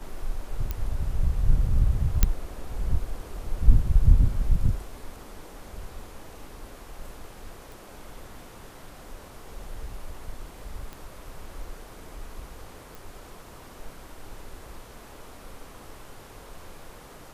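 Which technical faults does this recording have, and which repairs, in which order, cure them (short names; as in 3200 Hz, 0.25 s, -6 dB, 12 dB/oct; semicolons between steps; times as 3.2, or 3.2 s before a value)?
0.71 pop -15 dBFS
2.23 pop -3 dBFS
7.72 pop
10.93 pop
12.95 pop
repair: de-click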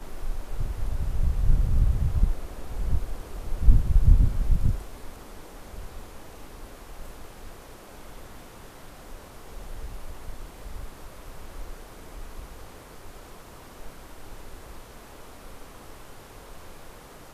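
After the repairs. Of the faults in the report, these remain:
none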